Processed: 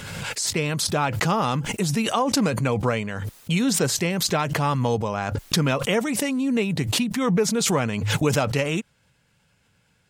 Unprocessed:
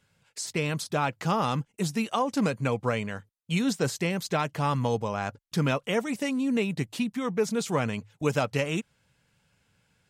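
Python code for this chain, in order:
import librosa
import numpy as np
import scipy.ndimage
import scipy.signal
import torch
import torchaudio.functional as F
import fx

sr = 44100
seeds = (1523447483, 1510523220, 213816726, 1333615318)

y = fx.pre_swell(x, sr, db_per_s=27.0)
y = y * 10.0 ** (3.5 / 20.0)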